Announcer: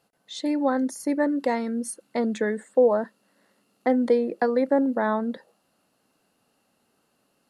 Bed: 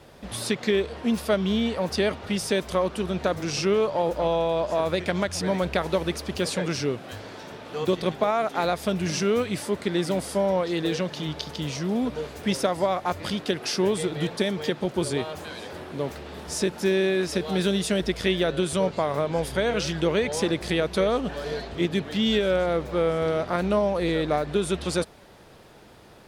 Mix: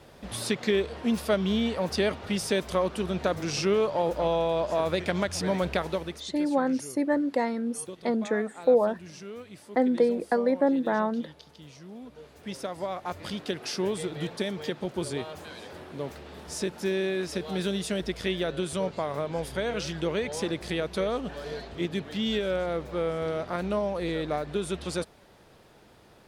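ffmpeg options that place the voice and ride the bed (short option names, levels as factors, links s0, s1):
-filter_complex "[0:a]adelay=5900,volume=0.794[s0];[1:a]volume=3.35,afade=t=out:st=5.71:d=0.58:silence=0.158489,afade=t=in:st=12.1:d=1.33:silence=0.237137[s1];[s0][s1]amix=inputs=2:normalize=0"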